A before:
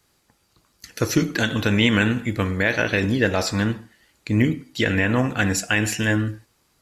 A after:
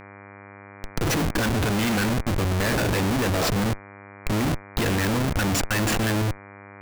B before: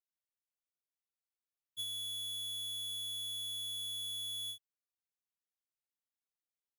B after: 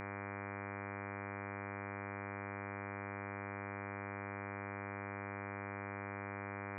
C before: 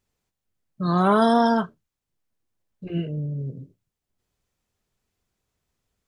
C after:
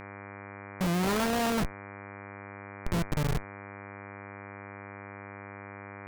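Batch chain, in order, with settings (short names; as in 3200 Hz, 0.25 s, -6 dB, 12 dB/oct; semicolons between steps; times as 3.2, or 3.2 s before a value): Schmitt trigger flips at -25.5 dBFS; buzz 100 Hz, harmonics 24, -44 dBFS -2 dB/oct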